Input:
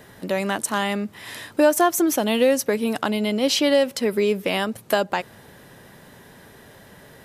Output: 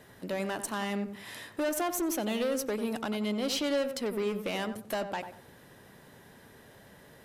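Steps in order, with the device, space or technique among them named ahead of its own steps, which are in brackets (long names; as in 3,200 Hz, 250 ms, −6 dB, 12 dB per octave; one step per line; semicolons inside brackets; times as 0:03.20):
rockabilly slapback (tube saturation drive 19 dB, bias 0.25; tape delay 92 ms, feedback 33%, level −6 dB, low-pass 1,100 Hz)
level −7.5 dB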